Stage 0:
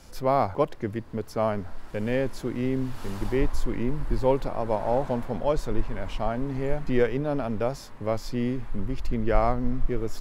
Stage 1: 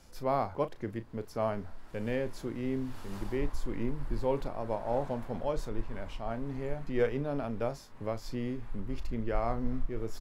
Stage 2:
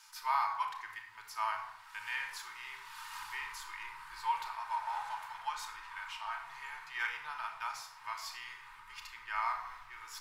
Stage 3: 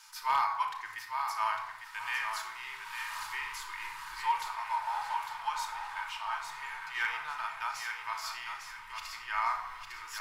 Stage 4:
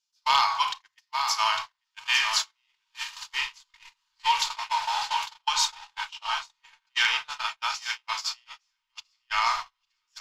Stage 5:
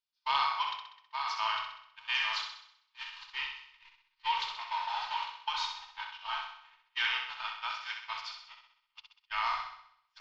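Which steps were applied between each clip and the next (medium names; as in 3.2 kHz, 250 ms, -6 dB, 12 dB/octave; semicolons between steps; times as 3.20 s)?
doubling 35 ms -12.5 dB; random flutter of the level, depth 55%; trim -4.5 dB
elliptic high-pass 920 Hz, stop band 40 dB; simulated room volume 2800 m³, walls furnished, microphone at 2.7 m; trim +4.5 dB
thinning echo 853 ms, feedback 29%, level -6 dB; hard clipper -24 dBFS, distortion -26 dB; trim +3.5 dB
gate -36 dBFS, range -44 dB; high-order bell 4.4 kHz +14.5 dB; trim +5.5 dB
low-pass 4.2 kHz 24 dB/octave; on a send: flutter echo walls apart 11 m, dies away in 0.68 s; on the sum: trim -8 dB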